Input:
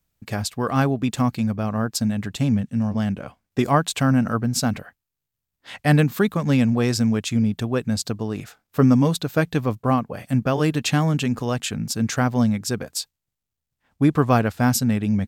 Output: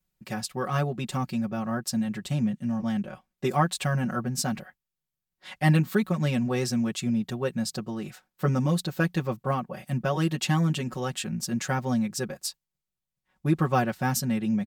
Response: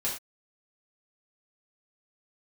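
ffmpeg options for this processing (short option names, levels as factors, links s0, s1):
-af "asetrate=45938,aresample=44100,aecho=1:1:5.4:0.97,volume=0.398"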